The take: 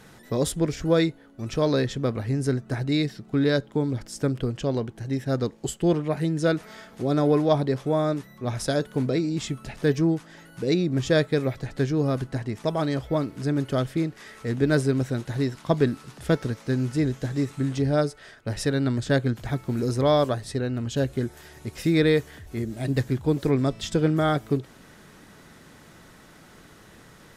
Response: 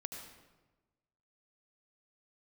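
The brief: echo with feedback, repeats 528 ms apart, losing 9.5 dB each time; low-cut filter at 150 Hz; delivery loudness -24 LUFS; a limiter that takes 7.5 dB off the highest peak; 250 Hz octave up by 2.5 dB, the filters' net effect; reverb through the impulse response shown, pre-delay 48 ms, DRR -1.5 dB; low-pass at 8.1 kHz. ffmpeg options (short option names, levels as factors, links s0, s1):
-filter_complex "[0:a]highpass=150,lowpass=8100,equalizer=f=250:t=o:g=4,alimiter=limit=0.237:level=0:latency=1,aecho=1:1:528|1056|1584|2112:0.335|0.111|0.0365|0.012,asplit=2[s0][s1];[1:a]atrim=start_sample=2205,adelay=48[s2];[s1][s2]afir=irnorm=-1:irlink=0,volume=1.5[s3];[s0][s3]amix=inputs=2:normalize=0,volume=0.708"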